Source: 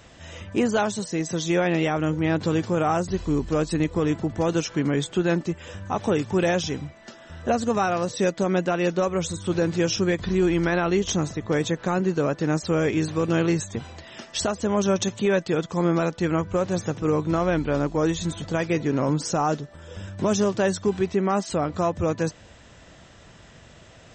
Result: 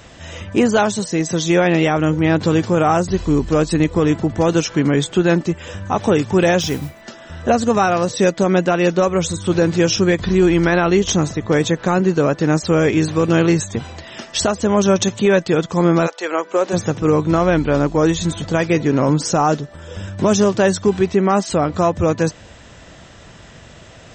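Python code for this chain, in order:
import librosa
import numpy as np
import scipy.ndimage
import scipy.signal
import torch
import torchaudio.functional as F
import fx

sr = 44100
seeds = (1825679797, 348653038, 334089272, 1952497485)

y = fx.mod_noise(x, sr, seeds[0], snr_db=19, at=(6.6, 7.0), fade=0.02)
y = fx.highpass(y, sr, hz=fx.line((16.06, 570.0), (16.72, 260.0)), slope=24, at=(16.06, 16.72), fade=0.02)
y = F.gain(torch.from_numpy(y), 7.5).numpy()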